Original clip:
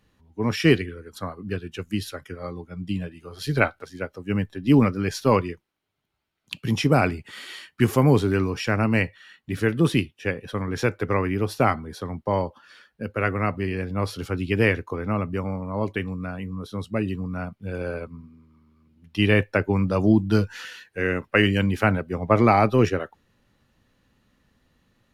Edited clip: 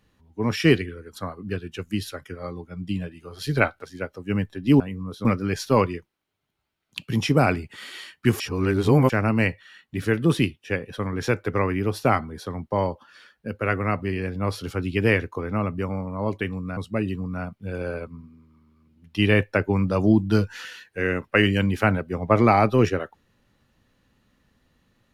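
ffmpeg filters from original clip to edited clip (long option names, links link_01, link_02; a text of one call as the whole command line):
ffmpeg -i in.wav -filter_complex "[0:a]asplit=6[link_01][link_02][link_03][link_04][link_05][link_06];[link_01]atrim=end=4.802[link_07];[link_02]atrim=start=16.318:end=16.772[link_08];[link_03]atrim=start=4.798:end=7.952[link_09];[link_04]atrim=start=7.948:end=8.652,asetpts=PTS-STARTPTS,areverse[link_10];[link_05]atrim=start=8.648:end=16.322[link_11];[link_06]atrim=start=16.768[link_12];[link_07][link_08]acrossfade=duration=0.004:curve1=hsin:curve2=hsin[link_13];[link_13][link_09]acrossfade=duration=0.004:curve1=hsin:curve2=hsin[link_14];[link_14][link_10]acrossfade=duration=0.004:curve1=hsin:curve2=hsin[link_15];[link_15][link_11]acrossfade=duration=0.004:curve1=hsin:curve2=hsin[link_16];[link_16][link_12]acrossfade=duration=0.004:curve1=hsin:curve2=hsin" out.wav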